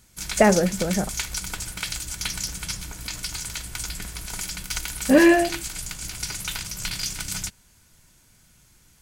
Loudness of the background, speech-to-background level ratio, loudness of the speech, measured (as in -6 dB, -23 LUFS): -30.0 LUFS, 10.5 dB, -19.5 LUFS